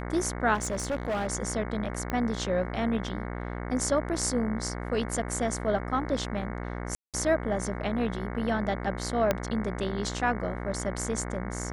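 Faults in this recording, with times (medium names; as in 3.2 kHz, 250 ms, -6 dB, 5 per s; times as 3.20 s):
buzz 60 Hz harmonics 37 -35 dBFS
0.54–1.28 s: clipped -26 dBFS
2.10 s: pop -17 dBFS
6.95–7.14 s: dropout 187 ms
9.31 s: pop -10 dBFS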